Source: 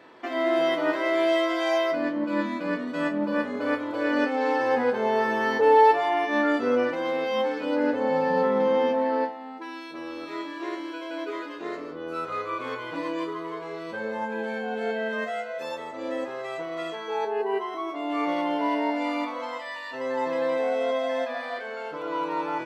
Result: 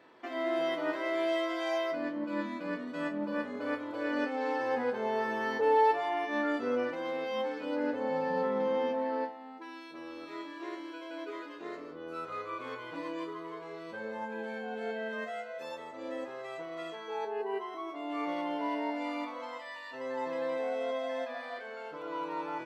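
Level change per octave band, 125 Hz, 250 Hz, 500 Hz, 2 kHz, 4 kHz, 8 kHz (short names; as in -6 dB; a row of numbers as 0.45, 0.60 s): -8.0 dB, -8.0 dB, -8.0 dB, -8.0 dB, -8.0 dB, n/a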